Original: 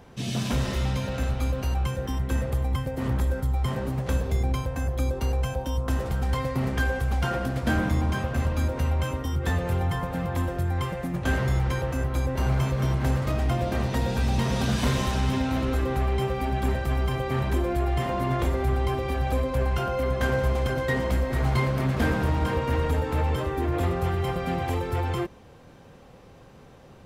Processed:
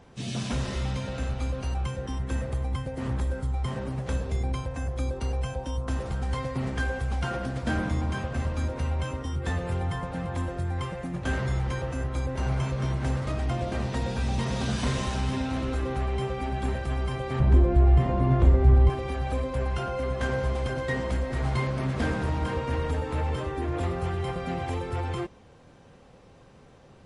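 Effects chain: 17.4–18.9 tilt -3 dB/oct; gain -3 dB; MP3 40 kbps 24000 Hz

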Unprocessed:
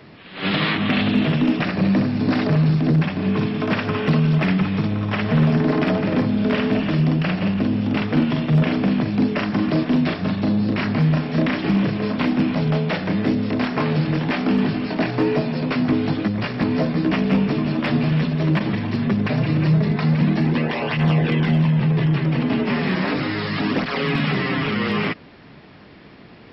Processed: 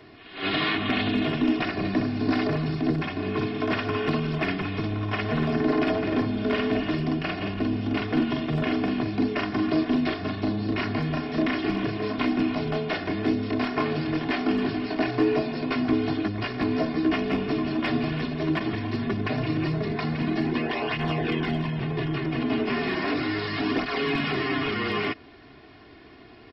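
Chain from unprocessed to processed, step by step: comb 2.8 ms, depth 72%; gain -5.5 dB

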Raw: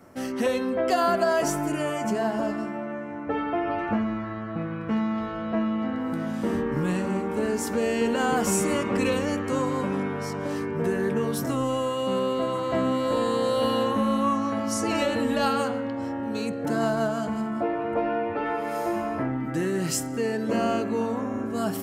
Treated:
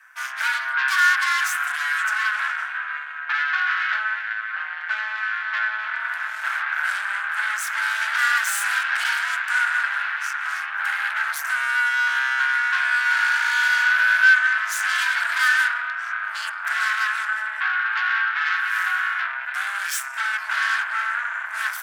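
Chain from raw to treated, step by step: added harmonics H 8 -12 dB, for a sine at -13 dBFS; resonant high-pass 1100 Hz, resonance Q 5.1; frequency shift +420 Hz; gain -1.5 dB

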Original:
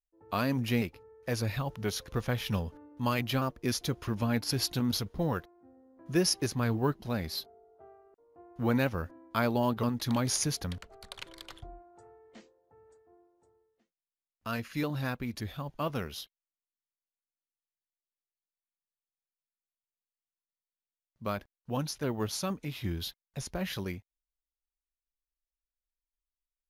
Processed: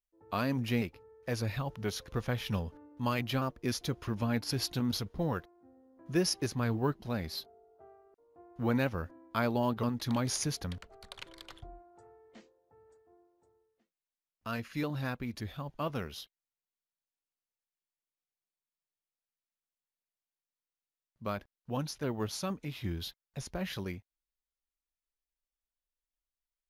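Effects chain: high shelf 7100 Hz -4.5 dB; gain -2 dB

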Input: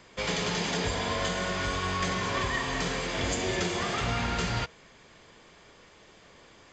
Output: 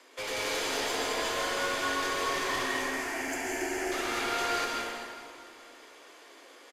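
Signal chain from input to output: CVSD 64 kbps; steep high-pass 250 Hz 96 dB/oct; one-sided clip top -33 dBFS; 2.66–3.92 fixed phaser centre 750 Hz, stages 8; wavefolder -27 dBFS; on a send: feedback echo 0.424 s, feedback 56%, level -22.5 dB; on the sum: plate-style reverb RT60 2.1 s, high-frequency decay 0.75×, pre-delay 0.115 s, DRR -3 dB; gain -2 dB; Vorbis 128 kbps 32000 Hz

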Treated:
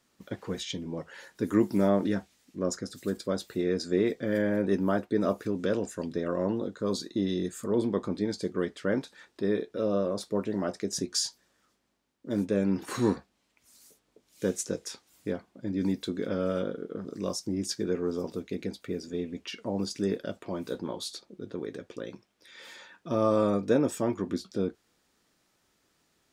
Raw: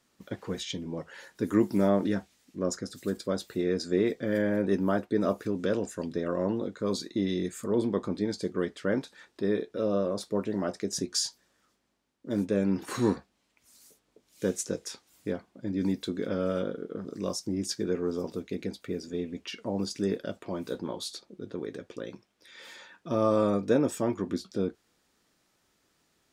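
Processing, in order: 6.58–7.62 bell 2200 Hz -9.5 dB 0.23 oct

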